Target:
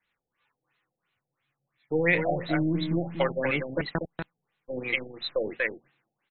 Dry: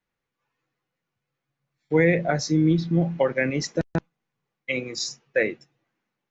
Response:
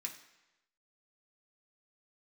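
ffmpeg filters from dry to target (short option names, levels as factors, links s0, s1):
-af "aeval=exprs='if(lt(val(0),0),0.708*val(0),val(0))':c=same,acompressor=threshold=0.0282:ratio=1.5,tiltshelf=f=1400:g=-9,aecho=1:1:240:0.501,afftfilt=real='re*lt(b*sr/1024,790*pow(4300/790,0.5+0.5*sin(2*PI*2.9*pts/sr)))':imag='im*lt(b*sr/1024,790*pow(4300/790,0.5+0.5*sin(2*PI*2.9*pts/sr)))':win_size=1024:overlap=0.75,volume=2.37"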